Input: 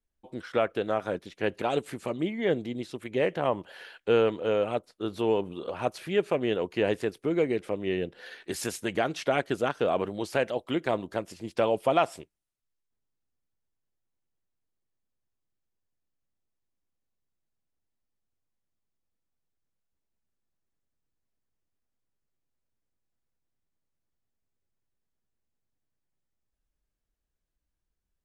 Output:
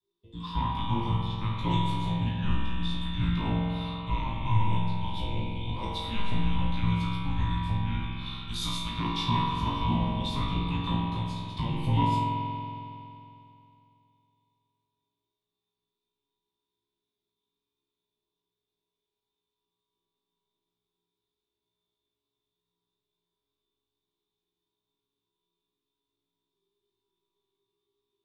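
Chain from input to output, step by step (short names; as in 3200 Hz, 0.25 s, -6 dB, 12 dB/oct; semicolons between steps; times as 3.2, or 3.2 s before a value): ten-band EQ 500 Hz -11 dB, 2000 Hz -10 dB, 4000 Hz +10 dB, 8000 Hz -5 dB; limiter -22.5 dBFS, peak gain reduction 7.5 dB; small resonant body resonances 530/1400/4000 Hz, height 18 dB, ringing for 25 ms; frequency shift -420 Hz; on a send: flutter echo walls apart 3 m, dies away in 0.45 s; on the sum: spring tank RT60 2.8 s, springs 46 ms, chirp 80 ms, DRR -1.5 dB; gain -7 dB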